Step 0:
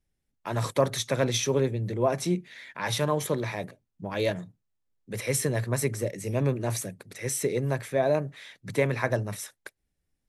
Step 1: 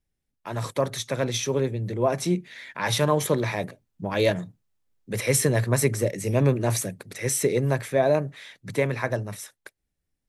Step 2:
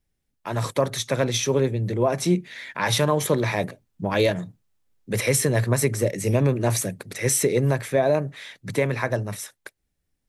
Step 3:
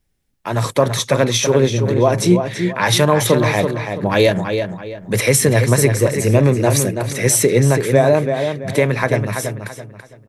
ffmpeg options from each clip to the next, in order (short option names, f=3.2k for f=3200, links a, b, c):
-af "dynaudnorm=f=260:g=17:m=7dB,volume=-1.5dB"
-af "alimiter=limit=-14dB:level=0:latency=1:release=270,volume=4dB"
-filter_complex "[0:a]asplit=2[a][b];[b]adelay=332,lowpass=f=3.9k:p=1,volume=-6.5dB,asplit=2[c][d];[d]adelay=332,lowpass=f=3.9k:p=1,volume=0.33,asplit=2[e][f];[f]adelay=332,lowpass=f=3.9k:p=1,volume=0.33,asplit=2[g][h];[h]adelay=332,lowpass=f=3.9k:p=1,volume=0.33[i];[a][c][e][g][i]amix=inputs=5:normalize=0,volume=7dB"